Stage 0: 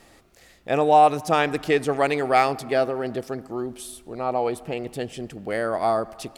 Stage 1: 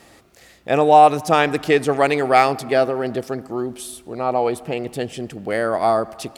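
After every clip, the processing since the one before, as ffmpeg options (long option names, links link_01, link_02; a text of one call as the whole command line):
ffmpeg -i in.wav -af "highpass=59,volume=4.5dB" out.wav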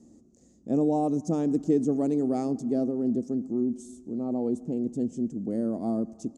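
ffmpeg -i in.wav -af "firequalizer=gain_entry='entry(130,0);entry(230,14);entry(400,-1);entry(730,-13);entry(1500,-26);entry(2400,-29);entry(4300,-19);entry(6600,1);entry(12000,-27)':delay=0.05:min_phase=1,volume=-8dB" out.wav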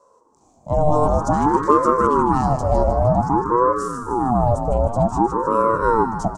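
ffmpeg -i in.wav -filter_complex "[0:a]asplit=7[link_01][link_02][link_03][link_04][link_05][link_06][link_07];[link_02]adelay=153,afreqshift=110,volume=-9dB[link_08];[link_03]adelay=306,afreqshift=220,volume=-14.2dB[link_09];[link_04]adelay=459,afreqshift=330,volume=-19.4dB[link_10];[link_05]adelay=612,afreqshift=440,volume=-24.6dB[link_11];[link_06]adelay=765,afreqshift=550,volume=-29.8dB[link_12];[link_07]adelay=918,afreqshift=660,volume=-35dB[link_13];[link_01][link_08][link_09][link_10][link_11][link_12][link_13]amix=inputs=7:normalize=0,dynaudnorm=framelen=190:gausssize=7:maxgain=12.5dB,aeval=exprs='val(0)*sin(2*PI*540*n/s+540*0.45/0.53*sin(2*PI*0.53*n/s))':channel_layout=same,volume=1dB" out.wav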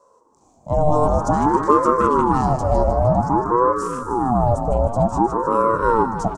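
ffmpeg -i in.wav -filter_complex "[0:a]asplit=2[link_01][link_02];[link_02]adelay=310,highpass=300,lowpass=3400,asoftclip=type=hard:threshold=-10dB,volume=-15dB[link_03];[link_01][link_03]amix=inputs=2:normalize=0" out.wav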